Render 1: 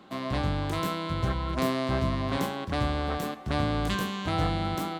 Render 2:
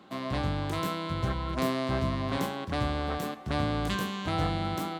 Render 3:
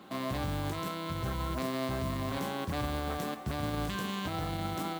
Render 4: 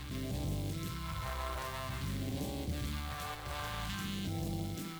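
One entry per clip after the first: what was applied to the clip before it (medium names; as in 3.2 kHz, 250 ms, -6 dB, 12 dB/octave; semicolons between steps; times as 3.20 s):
high-pass 50 Hz; trim -1.5 dB
peak limiter -27.5 dBFS, peak gain reduction 11 dB; modulation noise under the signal 19 dB; trim +2 dB
valve stage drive 33 dB, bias 0.4; reverse echo 346 ms -5 dB; phase shifter stages 2, 0.5 Hz, lowest notch 220–1300 Hz; trim +1 dB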